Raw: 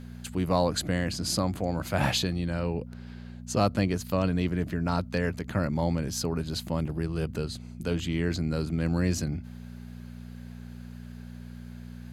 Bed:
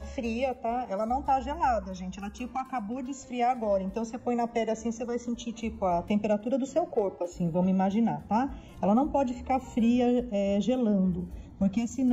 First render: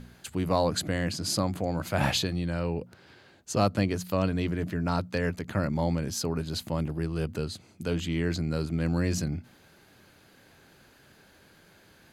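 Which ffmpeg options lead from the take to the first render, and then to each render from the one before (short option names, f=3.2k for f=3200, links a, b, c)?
-af "bandreject=f=60:t=h:w=4,bandreject=f=120:t=h:w=4,bandreject=f=180:t=h:w=4,bandreject=f=240:t=h:w=4"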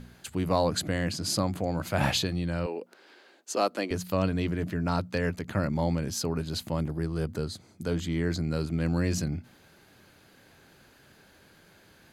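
-filter_complex "[0:a]asettb=1/sr,asplit=3[a][b][c];[a]atrim=end=2.664[d];[b]atrim=start=2.66:end=3.91,asetpts=PTS-STARTPTS,afade=t=in:d=0.004:c=qsin,afade=t=out:st=1.246:d=0.004:c=qsin,highpass=f=290:w=0.5412,highpass=f=290:w=1.3066[e];[c]atrim=start=3.906[f];[d][e]acrossfade=d=0.004:c1=hsin:c2=qsin[g];[g][f]acrossfade=d=0.004:c1=qsin:c2=hsin,asettb=1/sr,asplit=3[h][i][j];[h]atrim=end=6.804[k];[i]atrim=start=6.8:end=8.45,asetpts=PTS-STARTPTS,afade=t=in:d=0.004:c=qsin,afade=t=out:st=1.646:d=0.004:c=qsin,equalizer=f=2.7k:w=4.3:g=-9.5[l];[j]atrim=start=8.446[m];[k][l]acrossfade=d=0.004:c1=hsin:c2=qsin[n];[n][m]acrossfade=d=0.004:c1=qsin:c2=hsin"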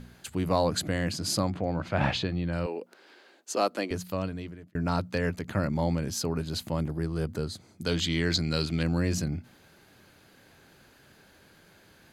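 -filter_complex "[0:a]asettb=1/sr,asplit=3[a][b][c];[a]atrim=end=1.504[d];[b]atrim=start=1.5:end=2.53,asetpts=PTS-STARTPTS,afade=t=in:d=0.004:c=qsin,afade=t=out:st=1.026:d=0.004:c=qsin,lowpass=3.5k[e];[c]atrim=start=2.526[f];[d][e]acrossfade=d=0.004:c1=hsin:c2=qsin[g];[g][f]acrossfade=d=0.004:c1=qsin:c2=hsin,asettb=1/sr,asplit=3[h][i][j];[h]atrim=end=7.864[k];[i]atrim=start=7.86:end=8.83,asetpts=PTS-STARTPTS,afade=t=in:d=0.004:c=qsin,afade=t=out:st=0.966:d=0.004:c=qsin,equalizer=f=3.8k:t=o:w=1.9:g=13.5[l];[j]atrim=start=8.826[m];[k][l]acrossfade=d=0.004:c1=hsin:c2=qsin[n];[n][m]acrossfade=d=0.004:c1=qsin:c2=hsin,asplit=2[o][p];[o]atrim=end=4.75,asetpts=PTS-STARTPTS,afade=t=out:st=3.79:d=0.96[q];[p]atrim=start=4.75,asetpts=PTS-STARTPTS,afade=t=in:d=0.004:c=hsin[r];[q][r]concat=n=2:v=0:a=1"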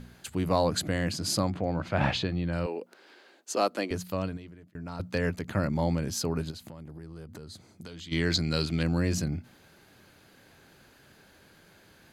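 -filter_complex "[0:a]asettb=1/sr,asplit=3[a][b][c];[a]atrim=end=4.374[d];[b]atrim=start=4.37:end=5,asetpts=PTS-STARTPTS,afade=t=in:d=0.004:c=qsin,afade=t=out:st=0.626:d=0.004:c=qsin,acompressor=threshold=-54dB:ratio=1.5:attack=3.2:release=140:knee=1:detection=peak[e];[c]atrim=start=4.996[f];[d][e]acrossfade=d=0.004:c1=hsin:c2=qsin[g];[g][f]acrossfade=d=0.004:c1=qsin:c2=hsin,asplit=3[h][i][j];[h]afade=t=out:st=6.5:d=0.02[k];[i]acompressor=threshold=-40dB:ratio=8:attack=3.2:release=140:knee=1:detection=peak,afade=t=in:st=6.5:d=0.02,afade=t=out:st=8.11:d=0.02[l];[j]afade=t=in:st=8.11:d=0.02[m];[k][l][m]amix=inputs=3:normalize=0"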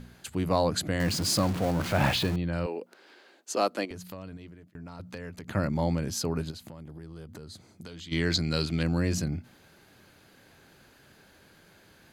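-filter_complex "[0:a]asettb=1/sr,asplit=3[a][b][c];[a]atrim=end=1.004[d];[b]atrim=start=1:end=2.36,asetpts=PTS-STARTPTS,afade=t=in:d=0.004:c=qsin,afade=t=out:st=1.356:d=0.004:c=qsin,aeval=exprs='val(0)+0.5*0.0299*sgn(val(0))':c=same[e];[c]atrim=start=2.356[f];[d][e]acrossfade=d=0.004:c1=hsin:c2=qsin[g];[g][f]acrossfade=d=0.004:c1=qsin:c2=hsin,asettb=1/sr,asplit=3[h][i][j];[h]atrim=end=3.854[k];[i]atrim=start=3.85:end=5.47,asetpts=PTS-STARTPTS,afade=t=in:d=0.004:c=qsin,afade=t=out:st=1.616:d=0.004:c=qsin,acompressor=threshold=-39dB:ratio=3:attack=3.2:release=140:knee=1:detection=peak[l];[j]atrim=start=5.466[m];[k][l]acrossfade=d=0.004:c1=hsin:c2=qsin[n];[n][m]acrossfade=d=0.004:c1=qsin:c2=hsin,asettb=1/sr,asplit=3[o][p][q];[o]atrim=end=6.844[r];[p]atrim=start=6.84:end=7.33,asetpts=PTS-STARTPTS,afade=t=in:d=0.004:c=qsin,afade=t=out:st=0.486:d=0.004:c=qsin,equalizer=f=3.3k:t=o:w=0.21:g=8.5[s];[q]atrim=start=7.326[t];[r][s]acrossfade=d=0.004:c1=hsin:c2=qsin[u];[u][t]acrossfade=d=0.004:c1=qsin:c2=hsin"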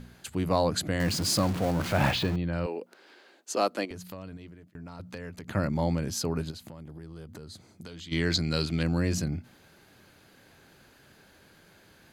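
-filter_complex "[0:a]asettb=1/sr,asplit=3[a][b][c];[a]atrim=end=2.114[d];[b]atrim=start=2.11:end=2.64,asetpts=PTS-STARTPTS,afade=t=in:d=0.004:c=qsin,afade=t=out:st=0.526:d=0.004:c=qsin,equalizer=f=11k:t=o:w=1.5:g=-7.5[e];[c]atrim=start=2.636[f];[d][e]acrossfade=d=0.004:c1=hsin:c2=qsin[g];[g][f]acrossfade=d=0.004:c1=qsin:c2=hsin"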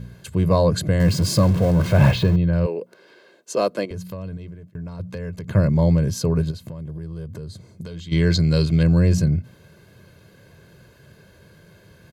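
-af "equalizer=f=150:w=0.44:g=13,aecho=1:1:1.9:0.62"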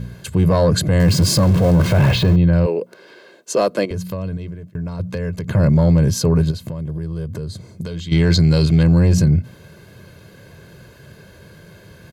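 -af "acontrast=73,alimiter=limit=-7.5dB:level=0:latency=1:release=33"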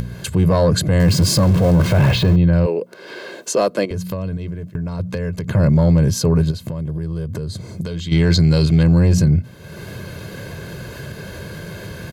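-af "acompressor=mode=upward:threshold=-20dB:ratio=2.5"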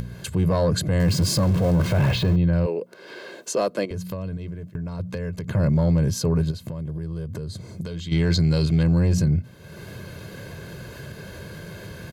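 -af "volume=-6dB"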